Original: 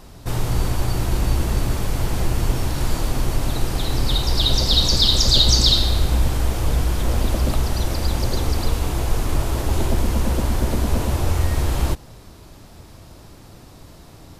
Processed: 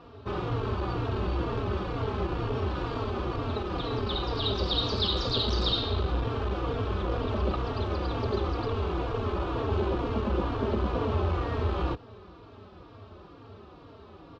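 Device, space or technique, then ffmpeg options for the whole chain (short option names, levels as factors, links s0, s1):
barber-pole flanger into a guitar amplifier: -filter_complex "[0:a]asplit=2[s0][s1];[s1]adelay=3.7,afreqshift=-2.1[s2];[s0][s2]amix=inputs=2:normalize=1,asoftclip=type=tanh:threshold=0.224,highpass=78,equalizer=f=92:t=q:w=4:g=4,equalizer=f=140:t=q:w=4:g=-9,equalizer=f=420:t=q:w=4:g=9,equalizer=f=1200:t=q:w=4:g=8,equalizer=f=2000:t=q:w=4:g=-7,lowpass=f=3500:w=0.5412,lowpass=f=3500:w=1.3066,volume=0.841"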